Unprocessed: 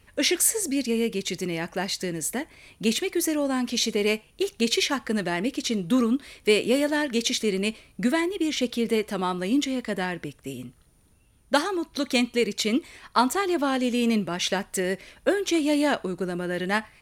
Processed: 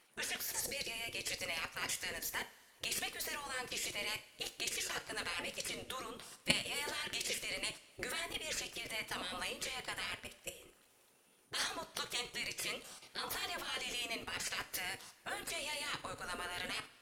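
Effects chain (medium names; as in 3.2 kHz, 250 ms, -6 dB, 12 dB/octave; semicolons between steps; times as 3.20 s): level held to a coarse grid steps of 16 dB; spectral gate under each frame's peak -15 dB weak; two-slope reverb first 0.39 s, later 2.4 s, from -18 dB, DRR 9 dB; trim +3 dB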